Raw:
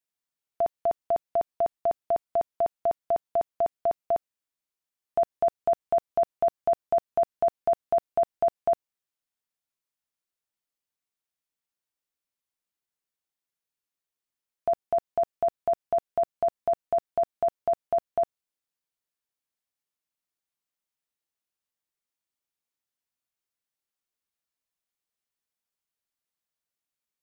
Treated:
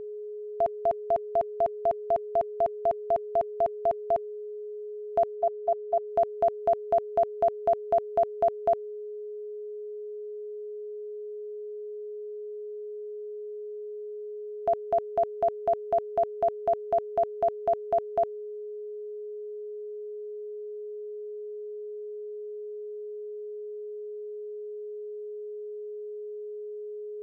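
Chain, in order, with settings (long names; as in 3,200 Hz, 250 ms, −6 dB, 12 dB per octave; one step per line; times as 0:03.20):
0:05.35–0:06.07: output level in coarse steps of 22 dB
steady tone 420 Hz −35 dBFS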